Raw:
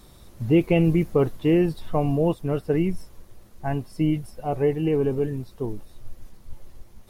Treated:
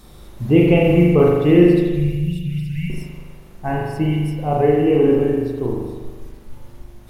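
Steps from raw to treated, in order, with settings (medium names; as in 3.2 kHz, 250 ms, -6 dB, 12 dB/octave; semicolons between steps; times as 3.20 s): 1.63–2.90 s: Chebyshev band-stop 160–2200 Hz, order 4; spring tank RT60 1.4 s, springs 40 ms, chirp 50 ms, DRR -3 dB; trim +3.5 dB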